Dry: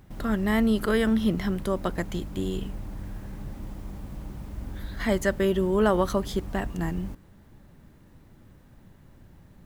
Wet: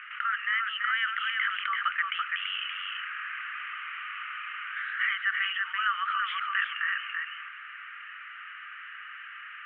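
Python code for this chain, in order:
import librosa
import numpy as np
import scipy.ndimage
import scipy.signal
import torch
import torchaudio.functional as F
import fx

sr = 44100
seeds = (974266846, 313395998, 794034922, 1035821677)

y = scipy.signal.sosfilt(scipy.signal.cheby1(5, 1.0, [1200.0, 3000.0], 'bandpass', fs=sr, output='sos'), x)
y = fx.rider(y, sr, range_db=4, speed_s=0.5)
y = y + 10.0 ** (-6.5 / 20.0) * np.pad(y, (int(335 * sr / 1000.0), 0))[:len(y)]
y = fx.env_flatten(y, sr, amount_pct=50)
y = F.gain(torch.from_numpy(y), 5.5).numpy()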